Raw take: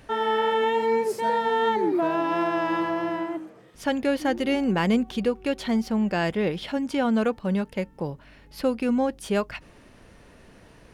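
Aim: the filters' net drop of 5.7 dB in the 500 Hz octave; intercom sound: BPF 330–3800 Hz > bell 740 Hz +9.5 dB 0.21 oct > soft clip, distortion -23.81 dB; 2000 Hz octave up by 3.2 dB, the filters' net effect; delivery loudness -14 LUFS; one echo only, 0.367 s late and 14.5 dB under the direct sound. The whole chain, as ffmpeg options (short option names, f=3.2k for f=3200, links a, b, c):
-af "highpass=330,lowpass=3.8k,equalizer=f=500:t=o:g=-7.5,equalizer=f=740:t=o:w=0.21:g=9.5,equalizer=f=2k:t=o:g=4.5,aecho=1:1:367:0.188,asoftclip=threshold=-14dB,volume=14.5dB"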